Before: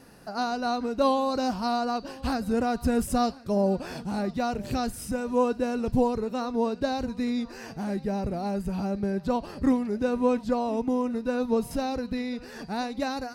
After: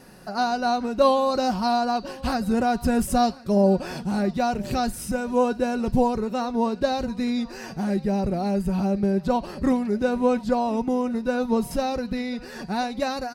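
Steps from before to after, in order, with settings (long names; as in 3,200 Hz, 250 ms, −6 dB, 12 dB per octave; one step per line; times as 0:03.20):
comb filter 5.4 ms, depth 38%
level +3.5 dB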